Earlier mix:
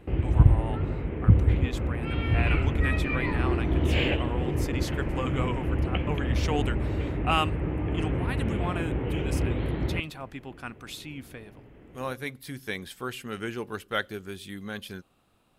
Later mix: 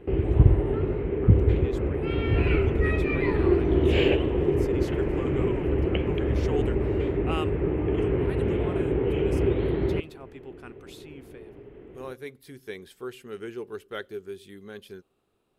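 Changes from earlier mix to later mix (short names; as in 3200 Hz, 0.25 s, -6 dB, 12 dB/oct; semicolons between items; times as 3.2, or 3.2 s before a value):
speech -9.0 dB; master: add bell 400 Hz +13 dB 0.48 oct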